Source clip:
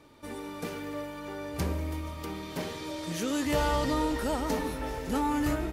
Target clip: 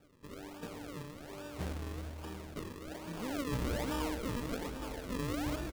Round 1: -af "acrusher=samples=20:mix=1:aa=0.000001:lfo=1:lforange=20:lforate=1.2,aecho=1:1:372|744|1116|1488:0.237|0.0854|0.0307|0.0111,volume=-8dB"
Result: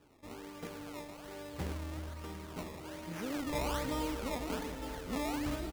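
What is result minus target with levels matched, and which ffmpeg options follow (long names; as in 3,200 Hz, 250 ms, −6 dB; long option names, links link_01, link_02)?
sample-and-hold swept by an LFO: distortion −6 dB
-af "acrusher=samples=41:mix=1:aa=0.000001:lfo=1:lforange=41:lforate=1.2,aecho=1:1:372|744|1116|1488:0.237|0.0854|0.0307|0.0111,volume=-8dB"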